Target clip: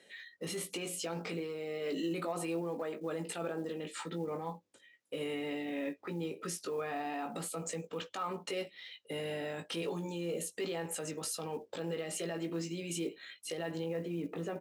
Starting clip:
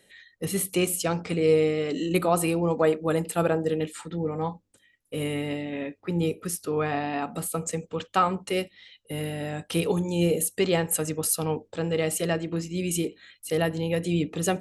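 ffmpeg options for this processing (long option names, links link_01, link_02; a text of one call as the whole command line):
ffmpeg -i in.wav -filter_complex "[0:a]asoftclip=type=tanh:threshold=-9dB,acompressor=threshold=-29dB:ratio=3,asetnsamples=nb_out_samples=441:pad=0,asendcmd='13.84 lowpass f 1800',lowpass=6500,alimiter=level_in=5dB:limit=-24dB:level=0:latency=1:release=11,volume=-5dB,highpass=250,asplit=2[link_01][link_02];[link_02]adelay=18,volume=-6dB[link_03];[link_01][link_03]amix=inputs=2:normalize=0,acrusher=bits=8:mode=log:mix=0:aa=0.000001" out.wav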